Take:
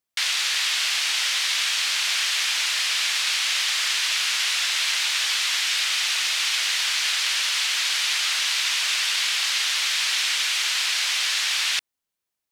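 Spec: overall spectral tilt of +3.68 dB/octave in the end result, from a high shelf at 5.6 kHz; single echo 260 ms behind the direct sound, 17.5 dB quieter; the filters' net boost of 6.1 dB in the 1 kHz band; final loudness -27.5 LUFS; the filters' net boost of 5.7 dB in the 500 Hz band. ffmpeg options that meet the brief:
-af "equalizer=f=500:t=o:g=4.5,equalizer=f=1000:t=o:g=7.5,highshelf=f=5600:g=-7.5,aecho=1:1:260:0.133,volume=0.531"

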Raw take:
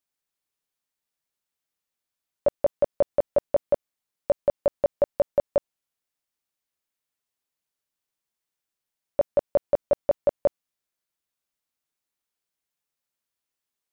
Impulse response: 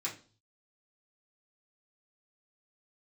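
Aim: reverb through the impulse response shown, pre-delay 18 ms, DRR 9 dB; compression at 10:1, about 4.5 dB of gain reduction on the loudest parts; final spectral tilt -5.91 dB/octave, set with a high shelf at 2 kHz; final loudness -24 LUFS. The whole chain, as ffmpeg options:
-filter_complex "[0:a]highshelf=f=2000:g=8,acompressor=threshold=0.1:ratio=10,asplit=2[s0][s1];[1:a]atrim=start_sample=2205,adelay=18[s2];[s1][s2]afir=irnorm=-1:irlink=0,volume=0.266[s3];[s0][s3]amix=inputs=2:normalize=0,volume=1.88"

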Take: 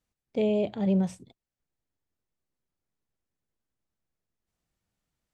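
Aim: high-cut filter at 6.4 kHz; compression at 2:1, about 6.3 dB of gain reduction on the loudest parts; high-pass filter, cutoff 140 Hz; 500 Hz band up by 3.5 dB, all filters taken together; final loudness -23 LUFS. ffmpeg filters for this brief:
-af "highpass=140,lowpass=6400,equalizer=f=500:t=o:g=4.5,acompressor=threshold=0.0251:ratio=2,volume=2.99"

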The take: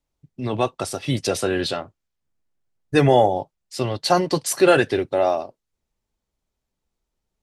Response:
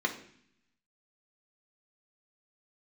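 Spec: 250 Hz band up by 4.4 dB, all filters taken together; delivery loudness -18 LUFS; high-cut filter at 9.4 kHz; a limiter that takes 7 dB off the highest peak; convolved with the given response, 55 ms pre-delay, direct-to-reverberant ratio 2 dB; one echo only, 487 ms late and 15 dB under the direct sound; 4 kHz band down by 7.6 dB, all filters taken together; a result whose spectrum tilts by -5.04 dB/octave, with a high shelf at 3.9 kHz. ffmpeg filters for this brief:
-filter_complex "[0:a]lowpass=9400,equalizer=f=250:t=o:g=6.5,highshelf=f=3900:g=-4.5,equalizer=f=4000:t=o:g=-6.5,alimiter=limit=0.355:level=0:latency=1,aecho=1:1:487:0.178,asplit=2[s0][s1];[1:a]atrim=start_sample=2205,adelay=55[s2];[s1][s2]afir=irnorm=-1:irlink=0,volume=0.316[s3];[s0][s3]amix=inputs=2:normalize=0,volume=1.26"

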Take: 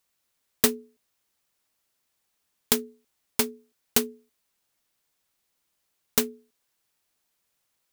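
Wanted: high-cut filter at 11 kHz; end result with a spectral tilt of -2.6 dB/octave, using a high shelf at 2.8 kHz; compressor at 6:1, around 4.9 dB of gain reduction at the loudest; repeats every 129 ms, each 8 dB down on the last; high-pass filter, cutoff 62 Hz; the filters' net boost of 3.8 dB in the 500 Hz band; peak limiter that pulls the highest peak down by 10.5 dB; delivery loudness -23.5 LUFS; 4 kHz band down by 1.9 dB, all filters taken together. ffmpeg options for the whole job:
-af "highpass=62,lowpass=11000,equalizer=f=500:t=o:g=4.5,highshelf=f=2800:g=4,equalizer=f=4000:t=o:g=-6,acompressor=threshold=0.0708:ratio=6,alimiter=limit=0.158:level=0:latency=1,aecho=1:1:129|258|387|516|645:0.398|0.159|0.0637|0.0255|0.0102,volume=5.62"

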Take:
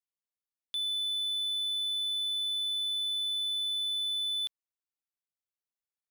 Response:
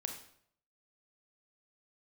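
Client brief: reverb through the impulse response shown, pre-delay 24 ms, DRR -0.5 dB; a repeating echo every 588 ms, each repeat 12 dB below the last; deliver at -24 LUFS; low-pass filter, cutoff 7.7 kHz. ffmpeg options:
-filter_complex "[0:a]lowpass=7700,aecho=1:1:588|1176|1764:0.251|0.0628|0.0157,asplit=2[s0][s1];[1:a]atrim=start_sample=2205,adelay=24[s2];[s1][s2]afir=irnorm=-1:irlink=0,volume=1.12[s3];[s0][s3]amix=inputs=2:normalize=0,volume=0.668"

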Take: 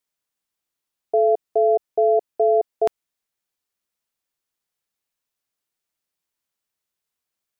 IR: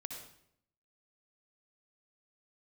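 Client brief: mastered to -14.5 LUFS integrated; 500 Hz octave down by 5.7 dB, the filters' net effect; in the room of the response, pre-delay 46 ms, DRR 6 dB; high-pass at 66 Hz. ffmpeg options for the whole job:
-filter_complex "[0:a]highpass=66,equalizer=f=500:t=o:g=-8,asplit=2[s0][s1];[1:a]atrim=start_sample=2205,adelay=46[s2];[s1][s2]afir=irnorm=-1:irlink=0,volume=0.631[s3];[s0][s3]amix=inputs=2:normalize=0,volume=2.99"

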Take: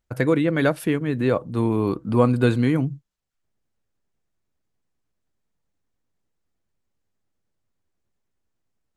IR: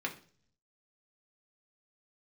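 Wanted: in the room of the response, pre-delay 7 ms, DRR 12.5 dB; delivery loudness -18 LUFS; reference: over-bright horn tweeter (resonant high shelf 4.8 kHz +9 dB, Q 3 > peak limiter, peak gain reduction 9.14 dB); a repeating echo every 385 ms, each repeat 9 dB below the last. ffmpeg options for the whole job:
-filter_complex "[0:a]aecho=1:1:385|770|1155|1540:0.355|0.124|0.0435|0.0152,asplit=2[s0][s1];[1:a]atrim=start_sample=2205,adelay=7[s2];[s1][s2]afir=irnorm=-1:irlink=0,volume=0.15[s3];[s0][s3]amix=inputs=2:normalize=0,highshelf=f=4800:t=q:w=3:g=9,volume=2.11,alimiter=limit=0.422:level=0:latency=1"

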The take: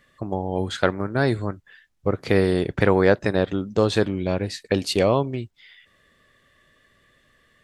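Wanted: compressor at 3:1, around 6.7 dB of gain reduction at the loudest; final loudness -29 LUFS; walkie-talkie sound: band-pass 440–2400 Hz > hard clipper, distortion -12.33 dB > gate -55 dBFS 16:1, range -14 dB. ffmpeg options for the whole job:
-af "acompressor=threshold=0.0891:ratio=3,highpass=440,lowpass=2400,asoftclip=type=hard:threshold=0.075,agate=range=0.2:threshold=0.00178:ratio=16,volume=1.58"

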